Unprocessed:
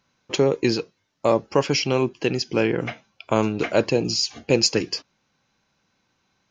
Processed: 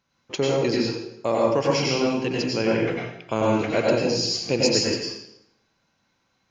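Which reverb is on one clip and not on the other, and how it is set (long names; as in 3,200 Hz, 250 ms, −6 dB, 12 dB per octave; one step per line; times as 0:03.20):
dense smooth reverb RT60 0.81 s, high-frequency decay 0.85×, pre-delay 80 ms, DRR −4 dB
level −5.5 dB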